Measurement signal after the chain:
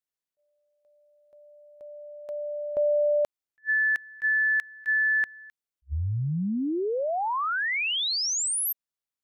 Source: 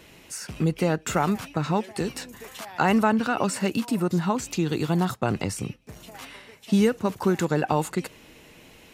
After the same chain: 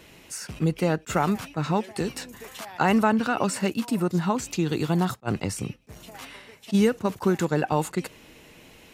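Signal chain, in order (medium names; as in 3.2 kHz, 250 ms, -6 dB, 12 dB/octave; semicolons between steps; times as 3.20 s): attacks held to a fixed rise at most 540 dB/s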